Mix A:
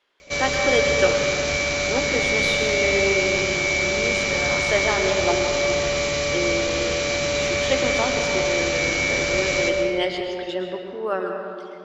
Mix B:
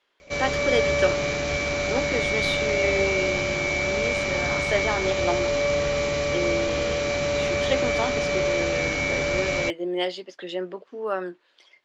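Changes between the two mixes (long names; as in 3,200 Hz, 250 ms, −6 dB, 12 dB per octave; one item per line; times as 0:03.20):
speech: send off
background: add high-shelf EQ 2,400 Hz −8.5 dB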